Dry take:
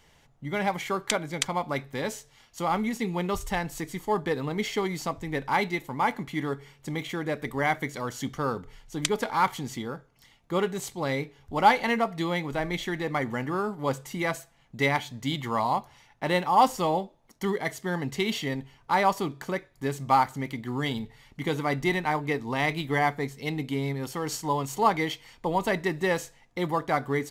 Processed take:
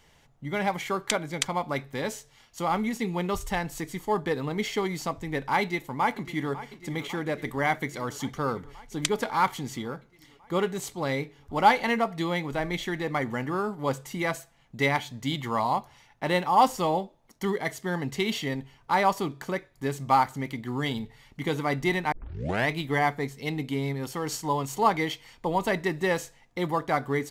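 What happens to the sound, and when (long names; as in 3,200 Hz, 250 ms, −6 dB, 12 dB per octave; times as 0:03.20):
0:05.61–0:06.52: delay throw 550 ms, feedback 75%, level −15 dB
0:22.12: tape start 0.57 s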